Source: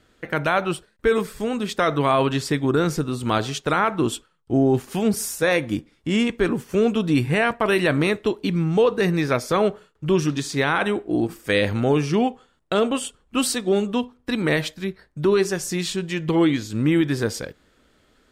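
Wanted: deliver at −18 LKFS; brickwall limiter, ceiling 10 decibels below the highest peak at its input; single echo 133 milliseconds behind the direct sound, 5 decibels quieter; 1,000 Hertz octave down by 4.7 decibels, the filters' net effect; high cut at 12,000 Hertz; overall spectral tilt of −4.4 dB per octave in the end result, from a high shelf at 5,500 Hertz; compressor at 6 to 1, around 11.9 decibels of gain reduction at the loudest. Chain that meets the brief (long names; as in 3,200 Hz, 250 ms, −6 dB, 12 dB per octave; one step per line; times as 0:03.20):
low-pass filter 12,000 Hz
parametric band 1,000 Hz −7 dB
high-shelf EQ 5,500 Hz +8.5 dB
downward compressor 6 to 1, threshold −28 dBFS
brickwall limiter −23.5 dBFS
single-tap delay 133 ms −5 dB
level +14.5 dB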